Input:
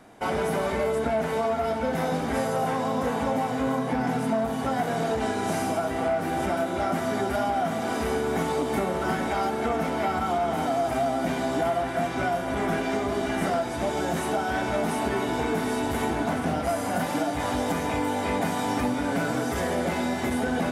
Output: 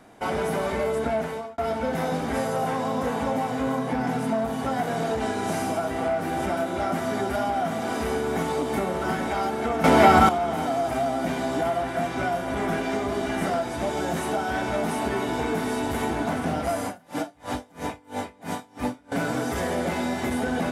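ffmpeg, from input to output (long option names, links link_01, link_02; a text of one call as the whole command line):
ffmpeg -i in.wav -filter_complex "[0:a]asettb=1/sr,asplit=3[link_01][link_02][link_03];[link_01]atrim=end=16.864[link_04];[link_02]atrim=start=16.86:end=19.12,asetpts=PTS-STARTPTS,afade=type=in:duration=0.004:curve=qsin,afade=type=out:start_time=2.256:duration=0.004:curve=qsin,aeval=exprs='val(0)*pow(10,-31*(0.5-0.5*cos(2*PI*3*n/s))/20)':channel_layout=same[link_05];[link_03]atrim=start=19.116[link_06];[link_04][link_05]acrossfade=duration=0.004:curve1=hsin:curve2=qsin[link_07];[link_07][link_06]acrossfade=duration=0.004:curve1=qsin:curve2=hsin,asplit=4[link_08][link_09][link_10][link_11];[link_08]atrim=end=1.58,asetpts=PTS-STARTPTS,afade=type=out:start_time=1.16:duration=0.42[link_12];[link_09]atrim=start=1.58:end=9.842,asetpts=PTS-STARTPTS,afade=type=in:duration=0.004:curve=hsin[link_13];[link_10]atrim=start=9.838:end=10.292,asetpts=PTS-STARTPTS,volume=11.5dB[link_14];[link_11]atrim=start=10.288[link_15];[link_12][link_13]concat=n=2:v=0:a=1[link_16];[link_16][link_14]acrossfade=duration=0.004:curve1=hsin:curve2=hsin[link_17];[link_17][link_15]acrossfade=duration=0.004:curve1=hsin:curve2=hsin" out.wav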